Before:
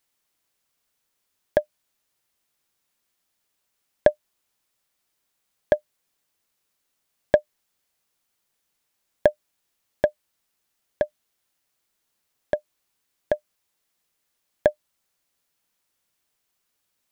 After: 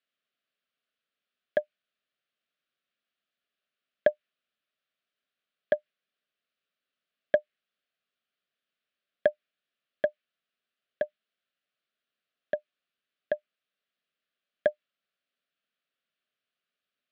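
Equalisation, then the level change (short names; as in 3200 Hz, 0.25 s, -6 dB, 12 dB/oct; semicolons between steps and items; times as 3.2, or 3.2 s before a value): dynamic EQ 2200 Hz, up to +5 dB, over -46 dBFS, Q 1.6; Butterworth band-stop 870 Hz, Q 2.4; speaker cabinet 250–3500 Hz, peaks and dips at 330 Hz -10 dB, 480 Hz -5 dB, 1000 Hz -9 dB, 2100 Hz -5 dB; -3.0 dB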